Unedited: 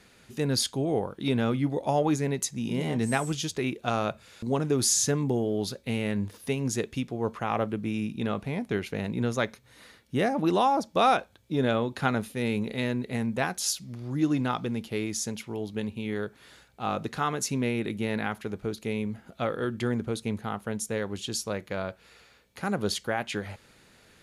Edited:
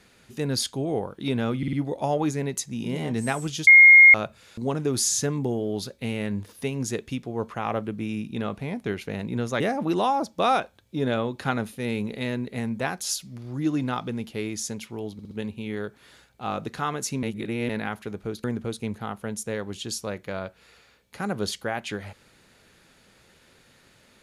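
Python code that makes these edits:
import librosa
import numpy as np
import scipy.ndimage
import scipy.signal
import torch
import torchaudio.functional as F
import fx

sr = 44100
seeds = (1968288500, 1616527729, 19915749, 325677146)

y = fx.edit(x, sr, fx.stutter(start_s=1.58, slice_s=0.05, count=4),
    fx.bleep(start_s=3.52, length_s=0.47, hz=2140.0, db=-7.5),
    fx.cut(start_s=9.45, length_s=0.72),
    fx.stutter(start_s=15.7, slice_s=0.06, count=4),
    fx.reverse_span(start_s=17.62, length_s=0.46),
    fx.cut(start_s=18.83, length_s=1.04), tone=tone)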